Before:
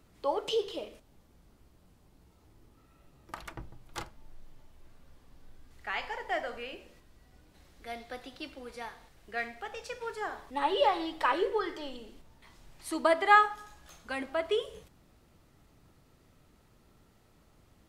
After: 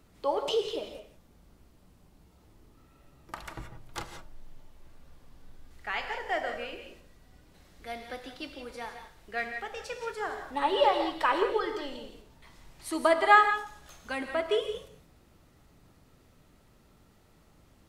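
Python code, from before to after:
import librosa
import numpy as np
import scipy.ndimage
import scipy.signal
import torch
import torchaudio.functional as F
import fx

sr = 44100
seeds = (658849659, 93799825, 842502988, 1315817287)

y = fx.rev_gated(x, sr, seeds[0], gate_ms=200, shape='rising', drr_db=7.0)
y = y * librosa.db_to_amplitude(1.5)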